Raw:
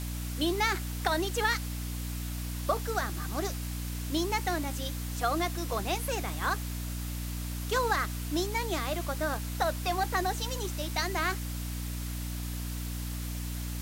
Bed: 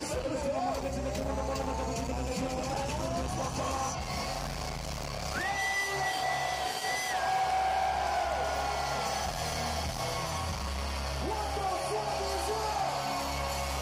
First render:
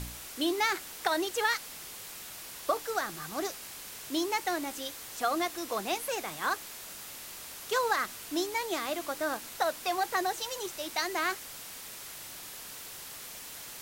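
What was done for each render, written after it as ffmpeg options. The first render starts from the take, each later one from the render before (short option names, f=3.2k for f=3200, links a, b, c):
-af "bandreject=f=60:t=h:w=4,bandreject=f=120:t=h:w=4,bandreject=f=180:t=h:w=4,bandreject=f=240:t=h:w=4,bandreject=f=300:t=h:w=4"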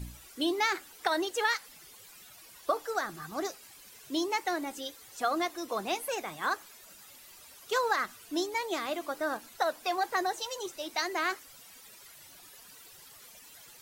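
-af "afftdn=nr=13:nf=-45"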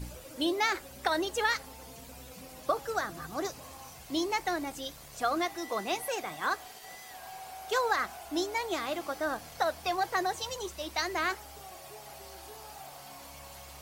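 -filter_complex "[1:a]volume=-16.5dB[a];[0:a][a]amix=inputs=2:normalize=0"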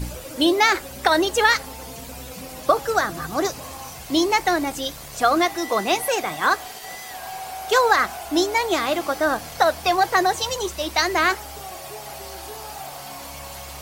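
-af "volume=11.5dB,alimiter=limit=-3dB:level=0:latency=1"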